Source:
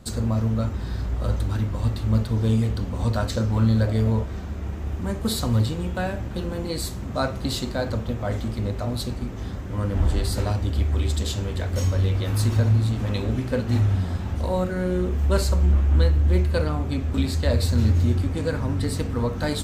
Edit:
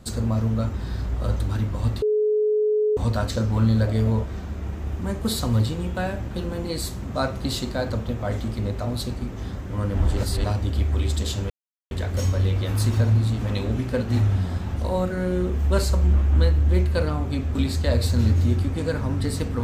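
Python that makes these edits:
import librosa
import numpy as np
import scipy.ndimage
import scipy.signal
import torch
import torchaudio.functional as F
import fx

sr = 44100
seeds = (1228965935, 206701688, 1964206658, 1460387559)

y = fx.edit(x, sr, fx.bleep(start_s=2.02, length_s=0.95, hz=425.0, db=-17.5),
    fx.reverse_span(start_s=10.17, length_s=0.27),
    fx.insert_silence(at_s=11.5, length_s=0.41), tone=tone)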